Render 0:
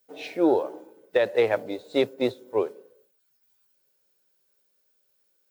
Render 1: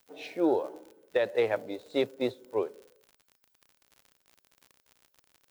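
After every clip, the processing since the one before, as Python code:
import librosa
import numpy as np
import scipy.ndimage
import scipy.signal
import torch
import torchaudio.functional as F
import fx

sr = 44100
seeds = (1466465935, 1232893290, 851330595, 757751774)

y = fx.dmg_crackle(x, sr, seeds[0], per_s=56.0, level_db=-37.0)
y = F.gain(torch.from_numpy(y), -5.0).numpy()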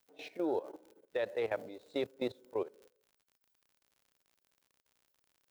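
y = fx.level_steps(x, sr, step_db=15)
y = F.gain(torch.from_numpy(y), -2.0).numpy()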